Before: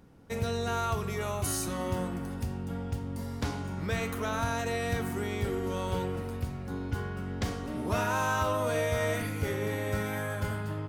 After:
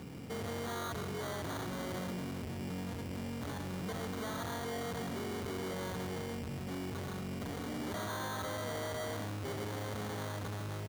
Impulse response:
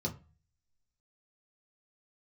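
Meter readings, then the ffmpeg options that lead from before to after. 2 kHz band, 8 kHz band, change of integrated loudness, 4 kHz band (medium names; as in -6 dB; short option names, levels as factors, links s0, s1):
-8.5 dB, -7.5 dB, -7.0 dB, -3.5 dB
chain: -af "lowshelf=f=420:g=5,aecho=1:1:146:0.266,asoftclip=type=hard:threshold=0.0168,alimiter=level_in=14.1:limit=0.0631:level=0:latency=1,volume=0.0708,acrusher=samples=17:mix=1:aa=0.000001,highpass=94,volume=3.16"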